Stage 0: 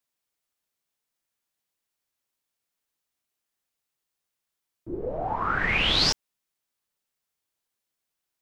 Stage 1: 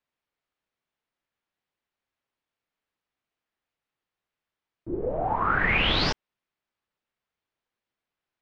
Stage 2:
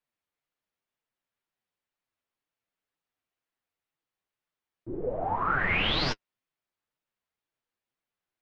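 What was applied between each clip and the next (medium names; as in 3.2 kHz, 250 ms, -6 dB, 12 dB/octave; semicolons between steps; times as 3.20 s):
low-pass 2.8 kHz 12 dB/octave; trim +2.5 dB
flange 2 Hz, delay 5.7 ms, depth 6.4 ms, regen +27%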